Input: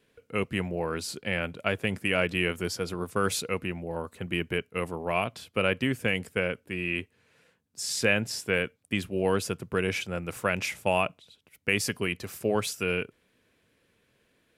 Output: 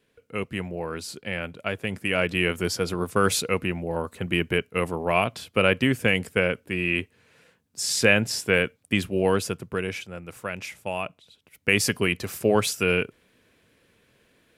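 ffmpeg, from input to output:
-af "volume=6.68,afade=t=in:st=1.84:d=0.94:silence=0.473151,afade=t=out:st=9.03:d=1.05:silence=0.298538,afade=t=in:st=10.98:d=0.86:silence=0.281838"

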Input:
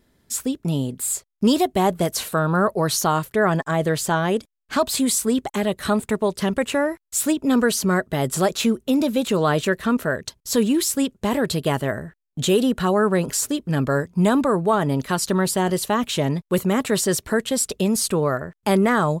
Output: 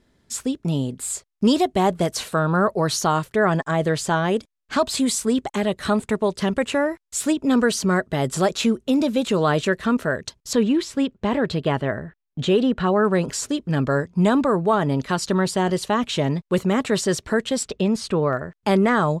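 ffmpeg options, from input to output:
-af "asetnsamples=n=441:p=0,asendcmd='10.53 lowpass f 3500;13.05 lowpass f 6500;17.63 lowpass f 3900;18.33 lowpass f 6500',lowpass=7900"

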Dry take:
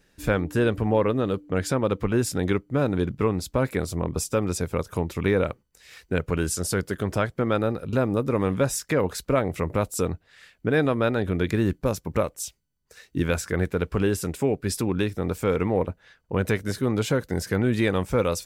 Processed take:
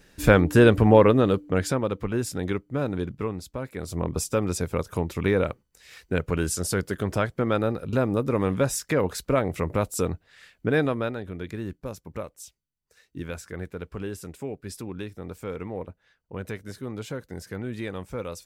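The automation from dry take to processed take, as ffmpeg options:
-af "volume=7.5,afade=t=out:st=0.95:d=0.97:silence=0.298538,afade=t=out:st=2.92:d=0.81:silence=0.421697,afade=t=in:st=3.73:d=0.28:silence=0.281838,afade=t=out:st=10.75:d=0.47:silence=0.316228"

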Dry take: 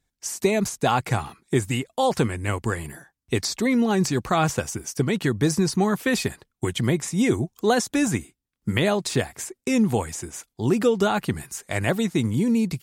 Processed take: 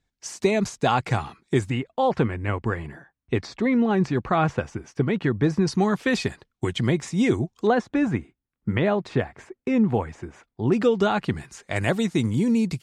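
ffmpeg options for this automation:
-af "asetnsamples=n=441:p=0,asendcmd='1.7 lowpass f 2400;5.67 lowpass f 5300;7.67 lowpass f 2000;10.72 lowpass f 4400;11.76 lowpass f 8100',lowpass=5600"

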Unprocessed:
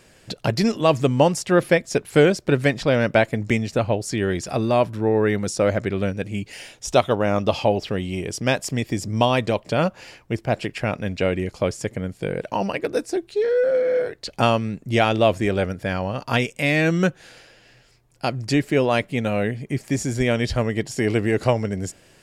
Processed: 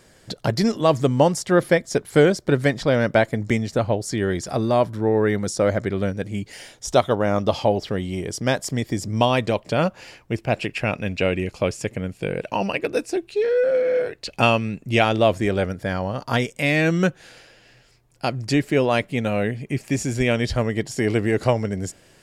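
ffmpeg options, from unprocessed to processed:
-af "asetnsamples=n=441:p=0,asendcmd='9.04 equalizer g 0;10.35 equalizer g 8.5;15.02 equalizer g -2.5;15.81 equalizer g -9.5;16.59 equalizer g 0;19.59 equalizer g 6.5;20.35 equalizer g -2.5',equalizer=f=2600:t=o:w=0.25:g=-9"

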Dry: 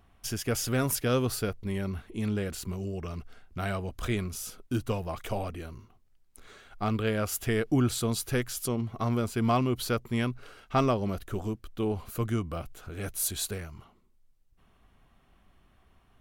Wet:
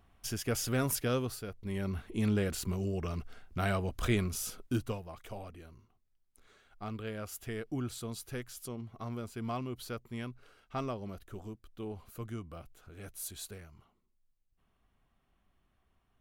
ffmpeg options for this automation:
-af "volume=2.82,afade=t=out:st=1.01:d=0.43:silence=0.375837,afade=t=in:st=1.44:d=0.68:silence=0.237137,afade=t=out:st=4.59:d=0.44:silence=0.251189"

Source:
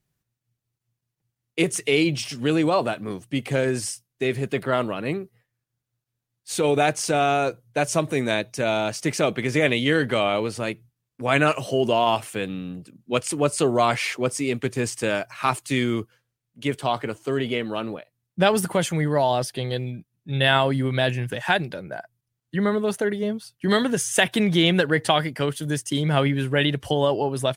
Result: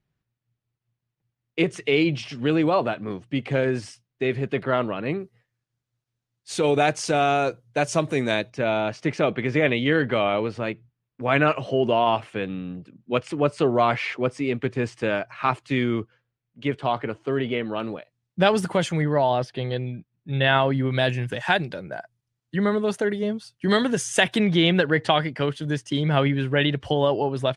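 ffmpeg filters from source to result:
-af "asetnsamples=n=441:p=0,asendcmd='5.2 lowpass f 6700;8.5 lowpass f 2900;17.8 lowpass f 6000;19.02 lowpass f 3100;20.92 lowpass f 7400;24.38 lowpass f 4200',lowpass=3400"

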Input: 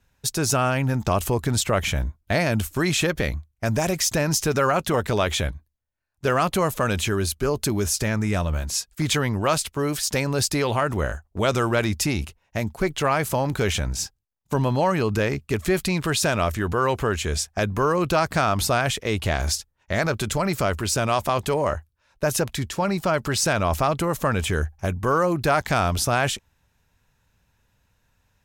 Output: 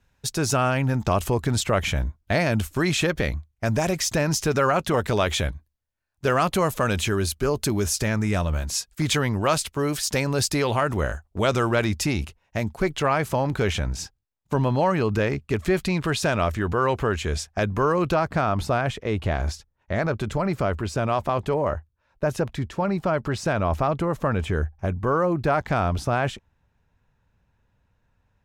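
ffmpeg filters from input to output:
-af "asetnsamples=n=441:p=0,asendcmd='4.97 lowpass f 11000;11.48 lowpass f 6200;13 lowpass f 3400;18.14 lowpass f 1300',lowpass=f=6000:p=1"

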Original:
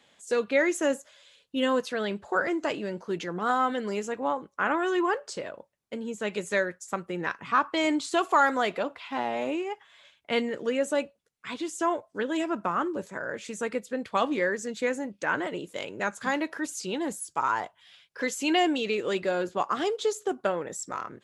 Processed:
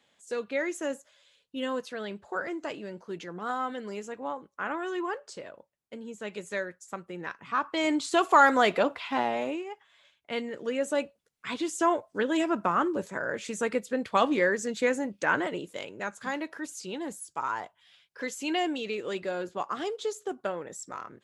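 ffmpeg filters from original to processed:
-af "volume=4.73,afade=t=in:st=7.46:d=1.46:silence=0.251189,afade=t=out:st=8.92:d=0.72:silence=0.266073,afade=t=in:st=10.43:d=1.08:silence=0.398107,afade=t=out:st=15.32:d=0.62:silence=0.446684"

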